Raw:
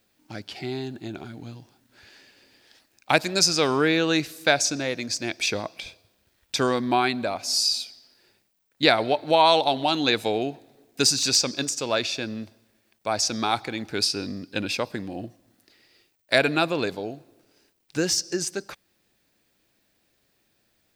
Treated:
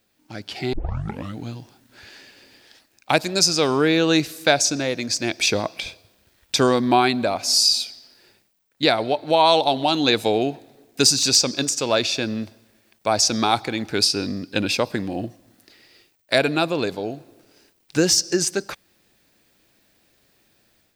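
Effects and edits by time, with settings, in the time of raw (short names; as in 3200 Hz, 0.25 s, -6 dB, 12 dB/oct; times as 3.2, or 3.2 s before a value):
0.73 tape start 0.65 s
whole clip: dynamic EQ 1800 Hz, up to -4 dB, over -33 dBFS, Q 0.96; AGC gain up to 7 dB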